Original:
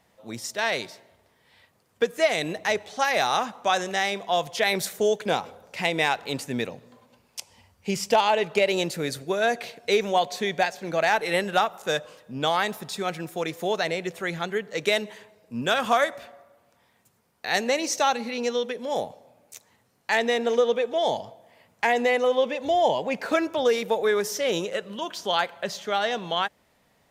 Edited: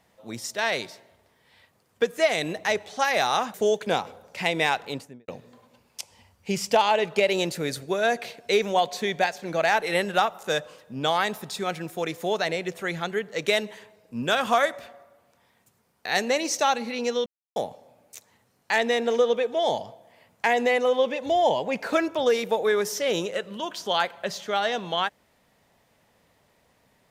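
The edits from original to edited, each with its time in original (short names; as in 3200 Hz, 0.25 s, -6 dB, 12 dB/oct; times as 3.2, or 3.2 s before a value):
3.54–4.93 cut
6.17–6.67 studio fade out
18.65–18.95 mute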